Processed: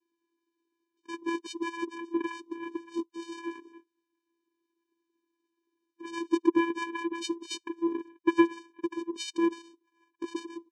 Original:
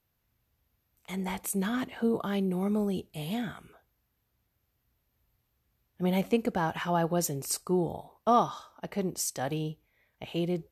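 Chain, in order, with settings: harmonic-percussive separation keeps percussive; vocoder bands 4, square 336 Hz; trim +8 dB

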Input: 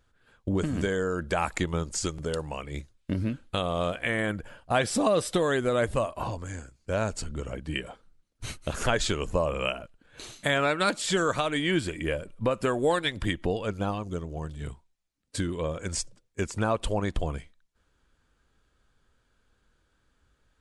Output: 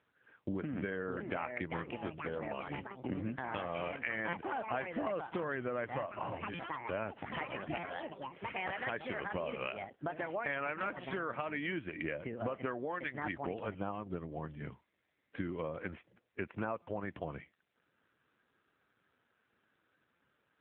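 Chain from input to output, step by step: ever faster or slower copies 726 ms, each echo +5 st, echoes 3, each echo -6 dB; high-pass 210 Hz 6 dB/octave; peaking EQ 1.9 kHz +3 dB 0.48 oct; compression 4:1, threshold -34 dBFS, peak gain reduction 13.5 dB; dynamic bell 440 Hz, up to -3 dB, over -51 dBFS, Q 4; careless resampling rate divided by 2×, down filtered, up hold; steep low-pass 3 kHz 48 dB/octave; buffer glitch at 4.28/6.54/7.78/16.82/20.15 s, samples 256, times 8; AMR-NB 7.4 kbps 8 kHz

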